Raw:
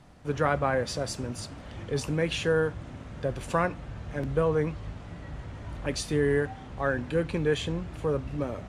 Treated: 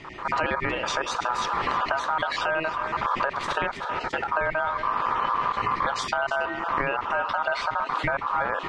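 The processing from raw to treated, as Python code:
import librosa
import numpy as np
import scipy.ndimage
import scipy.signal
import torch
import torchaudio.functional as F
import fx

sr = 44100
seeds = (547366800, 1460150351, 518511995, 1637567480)

y = fx.spec_dropout(x, sr, seeds[0], share_pct=26)
y = fx.recorder_agc(y, sr, target_db=-16.0, rise_db_per_s=49.0, max_gain_db=30)
y = fx.highpass(y, sr, hz=fx.line((3.71, 99.0), (4.29, 240.0)), slope=24, at=(3.71, 4.29), fade=0.02)
y = y * np.sin(2.0 * np.pi * 1100.0 * np.arange(len(y)) / sr)
y = fx.air_absorb(y, sr, metres=150.0)
y = y + 10.0 ** (-15.0 / 20.0) * np.pad(y, (int(321 * sr / 1000.0), 0))[:len(y)]
y = fx.env_flatten(y, sr, amount_pct=50)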